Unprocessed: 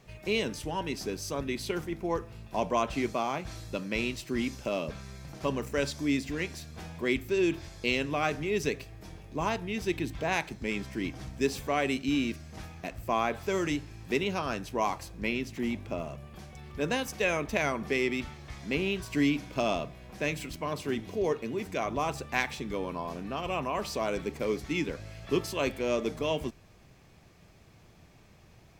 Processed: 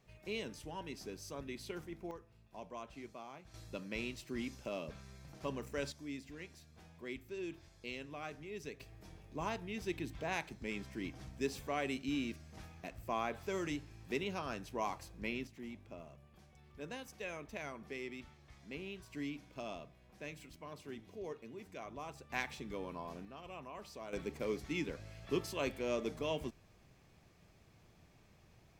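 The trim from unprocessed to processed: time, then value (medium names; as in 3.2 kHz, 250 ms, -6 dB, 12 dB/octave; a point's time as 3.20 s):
-12 dB
from 2.11 s -19.5 dB
from 3.54 s -10 dB
from 5.92 s -16.5 dB
from 8.80 s -9 dB
from 15.47 s -16 dB
from 22.30 s -9.5 dB
from 23.25 s -17 dB
from 24.13 s -7.5 dB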